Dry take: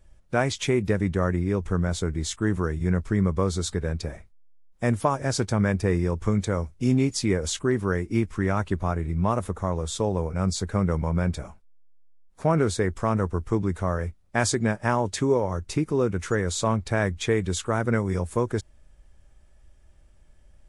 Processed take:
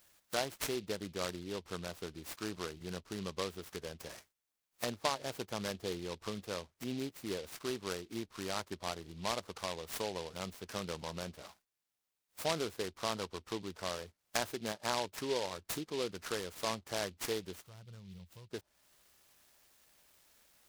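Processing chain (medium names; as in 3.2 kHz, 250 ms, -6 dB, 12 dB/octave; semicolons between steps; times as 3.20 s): low-pass that closes with the level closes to 920 Hz, closed at -23 dBFS; differentiator; time-frequency box 17.54–18.52 s, 210–2700 Hz -23 dB; delay time shaken by noise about 3.3 kHz, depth 0.11 ms; trim +11.5 dB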